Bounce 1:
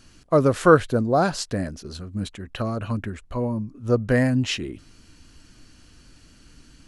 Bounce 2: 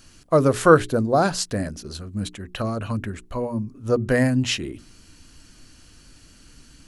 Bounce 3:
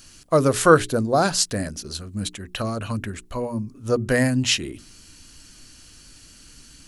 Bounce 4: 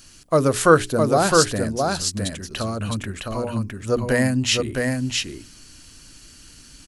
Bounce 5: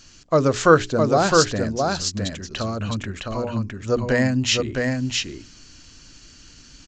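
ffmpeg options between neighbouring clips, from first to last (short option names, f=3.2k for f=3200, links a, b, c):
-af "highshelf=f=7.7k:g=8,bandreject=f=60:t=h:w=6,bandreject=f=120:t=h:w=6,bandreject=f=180:t=h:w=6,bandreject=f=240:t=h:w=6,bandreject=f=300:t=h:w=6,bandreject=f=360:t=h:w=6,bandreject=f=420:t=h:w=6,volume=1dB"
-af "highshelf=f=2.6k:g=8,volume=-1dB"
-af "aecho=1:1:661:0.668"
-af "aresample=16000,aresample=44100"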